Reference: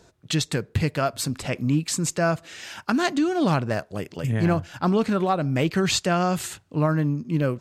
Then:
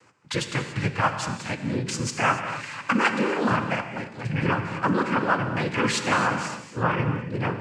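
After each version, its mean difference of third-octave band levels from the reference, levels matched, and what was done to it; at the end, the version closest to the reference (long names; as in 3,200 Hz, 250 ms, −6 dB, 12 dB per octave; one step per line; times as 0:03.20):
9.0 dB: flat-topped bell 1,400 Hz +9.5 dB 1.3 octaves
cochlear-implant simulation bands 8
delay with a low-pass on its return 180 ms, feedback 78%, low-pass 510 Hz, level −21 dB
reverb whose tail is shaped and stops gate 310 ms flat, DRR 6.5 dB
level −4 dB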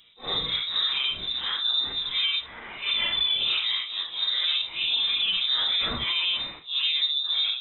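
16.5 dB: random phases in long frames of 200 ms
mains-hum notches 60/120/180/240/300 Hz
brickwall limiter −17.5 dBFS, peak gain reduction 7.5 dB
voice inversion scrambler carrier 3,800 Hz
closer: first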